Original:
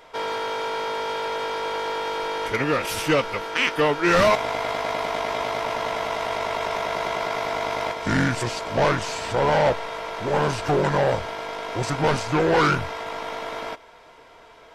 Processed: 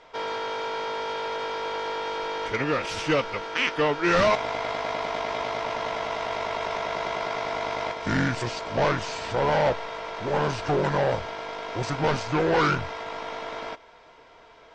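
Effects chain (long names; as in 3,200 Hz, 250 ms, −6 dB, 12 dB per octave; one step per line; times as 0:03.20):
low-pass filter 6,700 Hz 24 dB per octave
level −3 dB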